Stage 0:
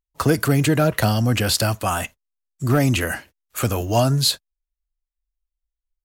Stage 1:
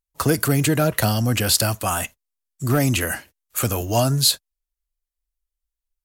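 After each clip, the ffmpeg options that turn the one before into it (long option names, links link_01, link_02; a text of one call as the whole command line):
ffmpeg -i in.wav -af "equalizer=frequency=13000:width=0.36:gain=7.5,volume=-1.5dB" out.wav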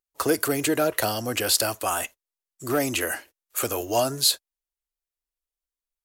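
ffmpeg -i in.wav -af "lowshelf=frequency=250:width_type=q:width=1.5:gain=-11,volume=-3dB" out.wav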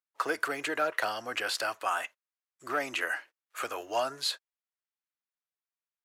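ffmpeg -i in.wav -af "bandpass=frequency=1500:width_type=q:width=1.1:csg=0" out.wav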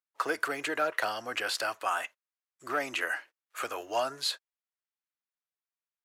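ffmpeg -i in.wav -af anull out.wav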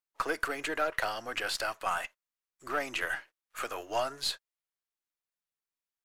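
ffmpeg -i in.wav -af "aeval=exprs='if(lt(val(0),0),0.708*val(0),val(0))':channel_layout=same" out.wav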